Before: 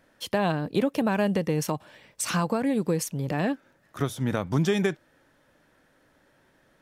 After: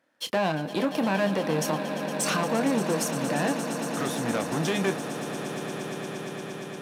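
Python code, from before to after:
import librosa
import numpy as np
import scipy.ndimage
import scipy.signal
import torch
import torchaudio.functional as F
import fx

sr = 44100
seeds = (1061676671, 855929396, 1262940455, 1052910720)

p1 = fx.leveller(x, sr, passes=2)
p2 = scipy.signal.sosfilt(scipy.signal.bessel(2, 250.0, 'highpass', norm='mag', fs=sr, output='sos'), p1)
p3 = fx.high_shelf(p2, sr, hz=8000.0, db=-4.5)
p4 = fx.notch(p3, sr, hz=420.0, q=14.0)
p5 = fx.doubler(p4, sr, ms=26.0, db=-10.5)
p6 = p5 + fx.echo_swell(p5, sr, ms=116, loudest=8, wet_db=-14, dry=0)
y = p6 * librosa.db_to_amplitude(-4.0)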